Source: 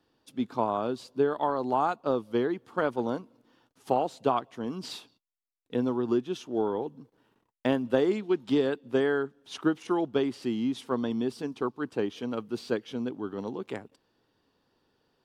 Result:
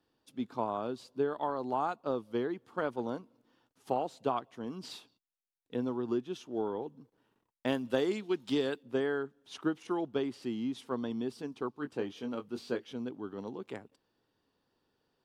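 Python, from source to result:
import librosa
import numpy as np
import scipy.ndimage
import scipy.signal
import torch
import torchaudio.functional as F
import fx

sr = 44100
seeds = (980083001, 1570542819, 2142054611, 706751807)

y = fx.high_shelf(x, sr, hz=2500.0, db=9.5, at=(7.67, 8.83))
y = fx.doubler(y, sr, ms=21.0, db=-7.5, at=(11.75, 12.93))
y = y * librosa.db_to_amplitude(-6.0)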